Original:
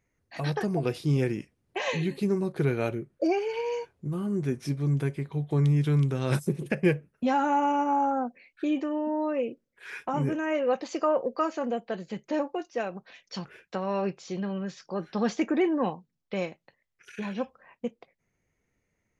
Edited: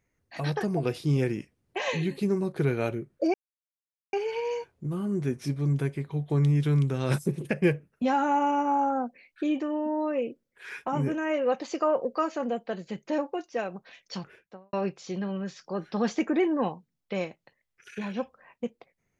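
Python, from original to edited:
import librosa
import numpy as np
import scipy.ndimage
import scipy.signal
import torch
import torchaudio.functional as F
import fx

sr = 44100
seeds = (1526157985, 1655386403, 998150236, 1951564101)

y = fx.studio_fade_out(x, sr, start_s=13.38, length_s=0.56)
y = fx.edit(y, sr, fx.insert_silence(at_s=3.34, length_s=0.79), tone=tone)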